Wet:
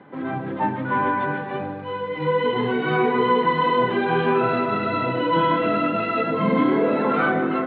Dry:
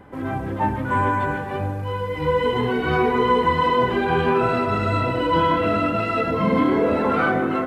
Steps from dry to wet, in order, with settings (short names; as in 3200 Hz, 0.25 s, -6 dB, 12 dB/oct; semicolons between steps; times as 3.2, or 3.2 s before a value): Chebyshev band-pass 130–3900 Hz, order 4